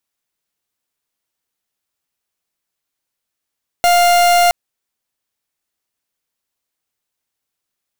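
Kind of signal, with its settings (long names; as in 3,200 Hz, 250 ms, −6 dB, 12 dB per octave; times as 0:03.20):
pulse wave 701 Hz, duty 42% −11 dBFS 0.67 s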